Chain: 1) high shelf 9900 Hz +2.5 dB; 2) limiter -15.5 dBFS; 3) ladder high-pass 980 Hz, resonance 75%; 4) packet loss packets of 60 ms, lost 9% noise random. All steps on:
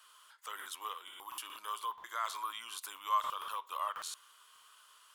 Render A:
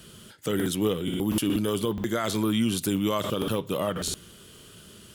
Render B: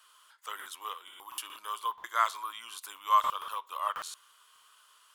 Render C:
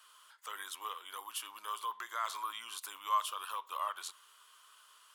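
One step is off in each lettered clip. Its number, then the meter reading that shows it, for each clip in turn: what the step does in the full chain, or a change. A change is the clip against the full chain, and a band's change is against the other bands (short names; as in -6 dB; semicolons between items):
3, 500 Hz band +16.5 dB; 2, crest factor change +2.5 dB; 4, momentary loudness spread change -4 LU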